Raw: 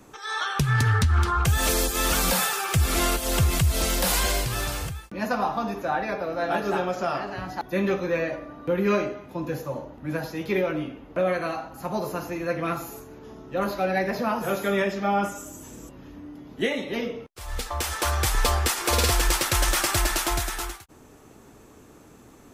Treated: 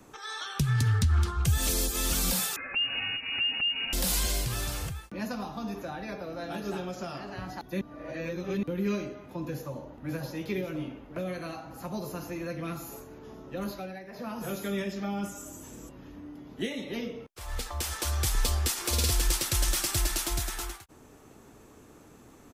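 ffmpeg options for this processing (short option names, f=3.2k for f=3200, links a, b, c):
-filter_complex "[0:a]asettb=1/sr,asplit=3[a][b][c];[a]atrim=end=2.564[d];[b]atrim=start=2.56:end=3.93,asetpts=PTS-STARTPTS,afade=t=in:d=0.004:c=qsin,afade=t=out:st=1.366:d=0.004:c=qsin,lowpass=f=2.5k:t=q:w=0.5098,lowpass=f=2.5k:t=q:w=0.6013,lowpass=f=2.5k:t=q:w=0.9,lowpass=f=2.5k:t=q:w=2.563,afreqshift=-2900[e];[c]atrim=start=3.926[f];[d][e]acrossfade=d=0.004:c1=hsin:c2=qsin[g];[g][f]acrossfade=d=0.004:c1=qsin:c2=hsin,asplit=2[h][i];[i]afade=t=in:st=9.54:d=0.01,afade=t=out:st=10.08:d=0.01,aecho=0:1:540|1080|1620|2160|2700|3240|3780|4320|4860|5400|5940:0.446684|0.312679|0.218875|0.153212|0.107249|0.0750741|0.0525519|0.0367863|0.0257504|0.0180253|0.0126177[j];[h][j]amix=inputs=2:normalize=0,asplit=5[k][l][m][n][o];[k]atrim=end=7.812[p];[l]atrim=start=7.808:end=8.632,asetpts=PTS-STARTPTS,areverse[q];[m]atrim=start=8.628:end=14,asetpts=PTS-STARTPTS,afade=t=out:st=5.032:d=0.34:silence=0.177828[r];[n]atrim=start=14:end=14.11,asetpts=PTS-STARTPTS,volume=-15dB[s];[o]atrim=start=14.11,asetpts=PTS-STARTPTS,afade=t=in:d=0.34:silence=0.177828[t];[p][q]acrossfade=d=0.004:c1=hsin:c2=hsin[u];[r][s][t]concat=n=3:v=0:a=1[v];[u][v]acrossfade=d=0.004:c1=hsin:c2=hsin,acrossover=split=330|3000[w][x][y];[x]acompressor=threshold=-36dB:ratio=6[z];[w][z][y]amix=inputs=3:normalize=0,volume=-3dB"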